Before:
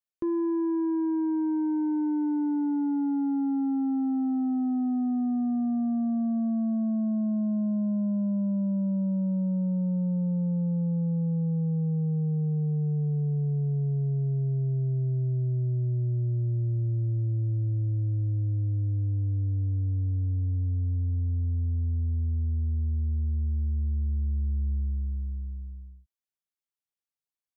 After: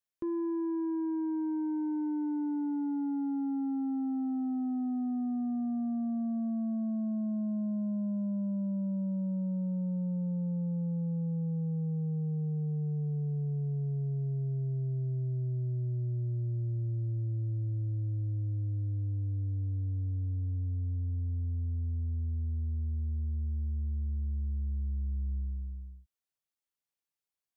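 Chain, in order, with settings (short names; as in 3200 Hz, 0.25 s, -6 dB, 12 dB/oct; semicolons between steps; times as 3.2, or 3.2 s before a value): limiter -30 dBFS, peak gain reduction 5.5 dB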